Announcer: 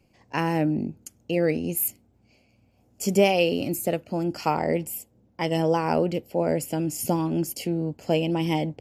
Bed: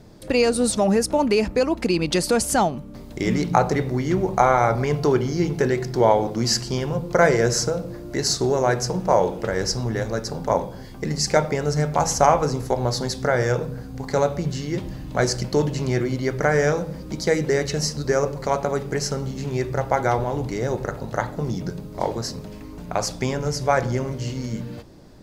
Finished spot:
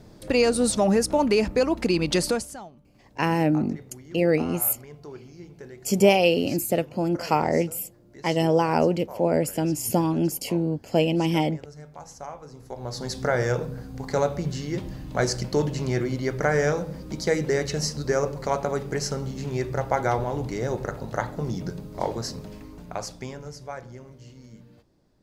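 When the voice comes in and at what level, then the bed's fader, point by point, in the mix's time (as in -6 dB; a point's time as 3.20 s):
2.85 s, +2.0 dB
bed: 2.28 s -1.5 dB
2.60 s -22 dB
12.45 s -22 dB
13.17 s -3 dB
22.53 s -3 dB
23.85 s -18.5 dB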